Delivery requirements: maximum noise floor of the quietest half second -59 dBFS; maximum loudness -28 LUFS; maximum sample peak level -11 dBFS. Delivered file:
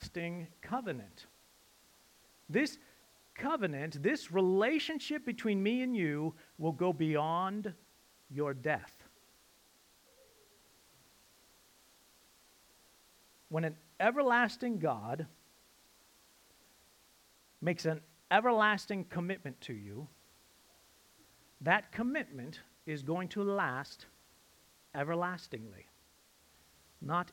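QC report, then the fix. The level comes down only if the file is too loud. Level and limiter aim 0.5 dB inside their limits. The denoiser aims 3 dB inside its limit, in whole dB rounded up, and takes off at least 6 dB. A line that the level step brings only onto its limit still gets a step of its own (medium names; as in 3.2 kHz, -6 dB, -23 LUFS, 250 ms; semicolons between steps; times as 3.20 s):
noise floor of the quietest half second -67 dBFS: pass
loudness -35.0 LUFS: pass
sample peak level -11.5 dBFS: pass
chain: none needed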